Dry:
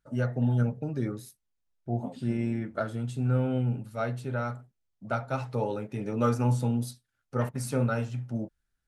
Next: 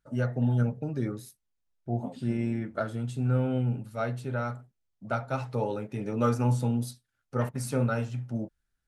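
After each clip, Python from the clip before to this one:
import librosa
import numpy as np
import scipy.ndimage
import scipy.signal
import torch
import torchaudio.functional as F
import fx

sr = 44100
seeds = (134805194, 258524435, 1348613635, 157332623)

y = x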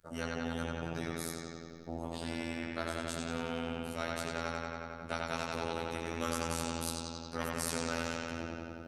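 y = fx.echo_bbd(x, sr, ms=91, stages=4096, feedback_pct=70, wet_db=-3)
y = fx.robotise(y, sr, hz=83.0)
y = fx.spectral_comp(y, sr, ratio=2.0)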